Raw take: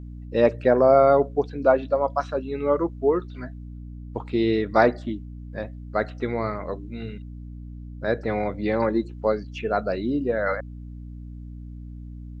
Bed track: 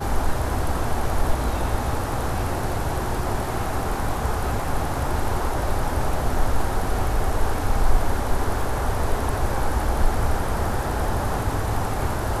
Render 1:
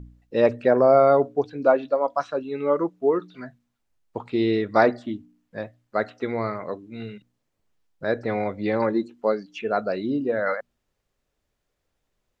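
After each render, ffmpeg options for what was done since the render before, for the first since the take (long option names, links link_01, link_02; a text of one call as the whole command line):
ffmpeg -i in.wav -af "bandreject=frequency=60:width_type=h:width=4,bandreject=frequency=120:width_type=h:width=4,bandreject=frequency=180:width_type=h:width=4,bandreject=frequency=240:width_type=h:width=4,bandreject=frequency=300:width_type=h:width=4" out.wav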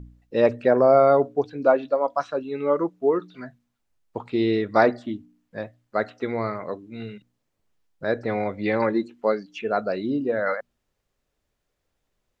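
ffmpeg -i in.wav -filter_complex "[0:a]asettb=1/sr,asplit=3[link_01][link_02][link_03];[link_01]atrim=end=8.534[link_04];[link_02]atrim=start=8.53:end=9.39,asetpts=PTS-STARTPTS,afade=type=in:duration=0.004:curve=qsin,afade=type=out:start_time=0.856:duration=0.004:curve=qsin,equalizer=frequency=2200:width=1.2:gain=5[link_05];[link_03]atrim=start=9.386[link_06];[link_04][link_05]acrossfade=duration=0.004:curve1=hsin:curve2=qsin[link_07];[link_07][link_06]acrossfade=duration=0.004:curve1=qsin:curve2=hsin" out.wav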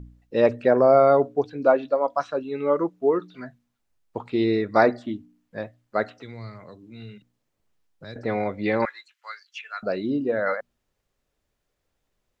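ffmpeg -i in.wav -filter_complex "[0:a]asettb=1/sr,asplit=3[link_01][link_02][link_03];[link_01]atrim=end=4.444[link_04];[link_02]atrim=start=4.44:end=4.96,asetpts=PTS-STARTPTS,afade=type=in:duration=0.004:curve=qsin,afade=type=out:start_time=0.516:duration=0.004:curve=qsin,asuperstop=centerf=3100:order=4:qfactor=3.5[link_05];[link_03]atrim=start=4.956[link_06];[link_04][link_05]acrossfade=duration=0.004:curve1=hsin:curve2=qsin[link_07];[link_07][link_06]acrossfade=duration=0.004:curve1=qsin:curve2=hsin,asettb=1/sr,asplit=3[link_08][link_09][link_10];[link_08]atrim=end=6.184[link_11];[link_09]atrim=start=6.18:end=8.16,asetpts=PTS-STARTPTS,afade=type=in:duration=0.004:curve=qsin,afade=type=out:start_time=1.976:duration=0.004:curve=qsin,acrossover=split=150|3000[link_12][link_13][link_14];[link_13]acompressor=threshold=-44dB:ratio=4:attack=3.2:release=140:knee=2.83:detection=peak[link_15];[link_12][link_15][link_14]amix=inputs=3:normalize=0[link_16];[link_10]atrim=start=8.156[link_17];[link_11][link_16]acrossfade=duration=0.004:curve1=hsin:curve2=qsin[link_18];[link_18][link_17]acrossfade=duration=0.004:curve1=qsin:curve2=hsin,asettb=1/sr,asplit=3[link_19][link_20][link_21];[link_19]atrim=end=8.854[link_22];[link_20]atrim=start=8.85:end=9.83,asetpts=PTS-STARTPTS,afade=type=in:duration=0.004:curve=qsin,afade=type=out:start_time=0.976:duration=0.004:curve=qsin,highpass=frequency=1400:width=0.5412,highpass=frequency=1400:width=1.3066[link_23];[link_21]atrim=start=9.826[link_24];[link_22][link_23]acrossfade=duration=0.004:curve1=hsin:curve2=qsin[link_25];[link_25][link_24]acrossfade=duration=0.004:curve1=qsin:curve2=hsin" out.wav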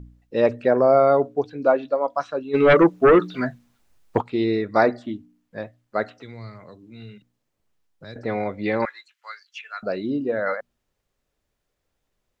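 ffmpeg -i in.wav -filter_complex "[0:a]asplit=3[link_01][link_02][link_03];[link_01]afade=type=out:start_time=2.53:duration=0.02[link_04];[link_02]aeval=exprs='0.355*sin(PI/2*2.82*val(0)/0.355)':channel_layout=same,afade=type=in:start_time=2.53:duration=0.02,afade=type=out:start_time=4.2:duration=0.02[link_05];[link_03]afade=type=in:start_time=4.2:duration=0.02[link_06];[link_04][link_05][link_06]amix=inputs=3:normalize=0" out.wav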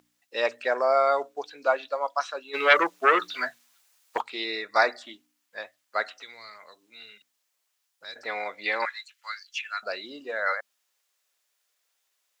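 ffmpeg -i in.wav -af "highpass=890,highshelf=frequency=2800:gain=10.5" out.wav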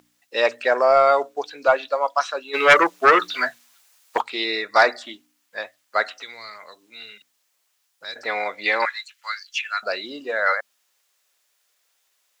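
ffmpeg -i in.wav -af "acontrast=74" out.wav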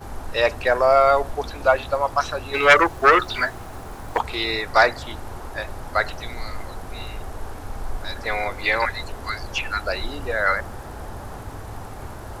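ffmpeg -i in.wav -i bed.wav -filter_complex "[1:a]volume=-11dB[link_01];[0:a][link_01]amix=inputs=2:normalize=0" out.wav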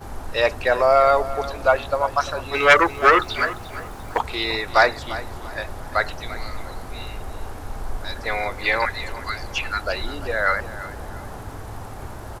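ffmpeg -i in.wav -af "aecho=1:1:345|690|1035:0.178|0.0569|0.0182" out.wav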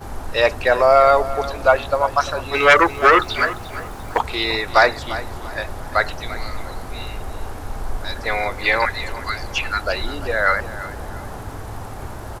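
ffmpeg -i in.wav -af "volume=3dB,alimiter=limit=-2dB:level=0:latency=1" out.wav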